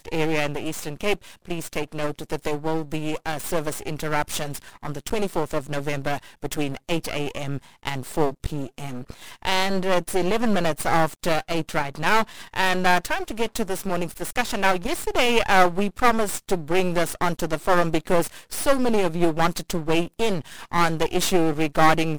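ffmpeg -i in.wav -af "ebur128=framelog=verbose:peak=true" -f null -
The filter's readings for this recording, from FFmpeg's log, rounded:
Integrated loudness:
  I:         -24.4 LUFS
  Threshold: -34.5 LUFS
Loudness range:
  LRA:         6.5 LU
  Threshold: -44.6 LUFS
  LRA low:   -28.6 LUFS
  LRA high:  -22.1 LUFS
True peak:
  Peak:       -1.9 dBFS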